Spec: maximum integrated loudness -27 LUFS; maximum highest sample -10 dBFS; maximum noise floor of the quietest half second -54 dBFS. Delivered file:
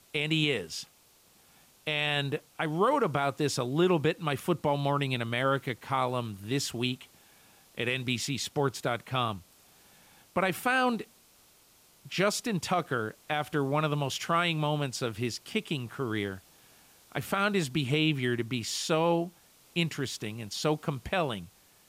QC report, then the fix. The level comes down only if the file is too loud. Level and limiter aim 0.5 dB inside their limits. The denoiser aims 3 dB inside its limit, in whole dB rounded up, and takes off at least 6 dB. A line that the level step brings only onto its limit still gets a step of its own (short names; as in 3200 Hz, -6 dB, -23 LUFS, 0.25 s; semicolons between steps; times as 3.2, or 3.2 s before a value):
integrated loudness -30.0 LUFS: OK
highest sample -15.0 dBFS: OK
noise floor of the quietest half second -62 dBFS: OK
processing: none